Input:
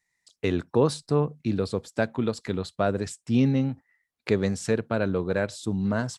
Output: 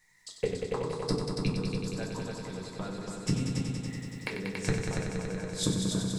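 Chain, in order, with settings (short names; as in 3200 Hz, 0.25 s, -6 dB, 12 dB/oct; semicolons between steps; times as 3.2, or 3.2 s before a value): 1.58–4.4 high shelf 2300 Hz +9.5 dB; flipped gate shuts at -25 dBFS, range -29 dB; multi-head echo 94 ms, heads all three, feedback 70%, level -8 dB; reverb RT60 0.30 s, pre-delay 4 ms, DRR 0 dB; gain +8.5 dB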